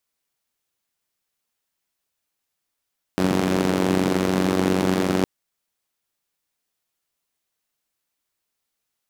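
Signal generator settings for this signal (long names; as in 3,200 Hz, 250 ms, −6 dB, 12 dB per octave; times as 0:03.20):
pulse-train model of a four-cylinder engine, steady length 2.06 s, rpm 2,800, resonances 200/300 Hz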